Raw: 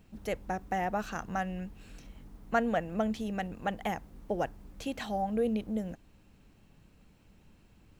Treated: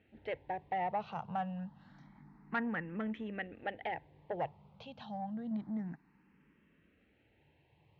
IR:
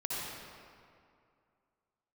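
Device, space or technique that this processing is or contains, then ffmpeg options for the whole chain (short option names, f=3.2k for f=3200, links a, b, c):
barber-pole phaser into a guitar amplifier: -filter_complex "[0:a]asettb=1/sr,asplit=3[a][b][c];[a]atrim=end=4.864[d];[b]atrim=start=4.86:end=5.51,asetpts=PTS-STARTPTS,afade=t=in:d=0.004:c=qsin,afade=t=out:st=0.646:d=0.004:c=qsin,equalizer=f=920:w=0.4:g=-8.5[e];[c]atrim=start=5.506[f];[d][e]acrossfade=d=0.004:c1=hsin:c2=qsin[g];[g][f]acrossfade=d=0.004:c1=qsin:c2=hsin,asplit=2[h][i];[i]afreqshift=0.28[j];[h][j]amix=inputs=2:normalize=1,asoftclip=type=tanh:threshold=-26.5dB,highpass=110,equalizer=f=150:t=q:w=4:g=8,equalizer=f=890:t=q:w=4:g=8,equalizer=f=1.9k:t=q:w=4:g=7,lowpass=f=3.6k:w=0.5412,lowpass=f=3.6k:w=1.3066,volume=-3.5dB"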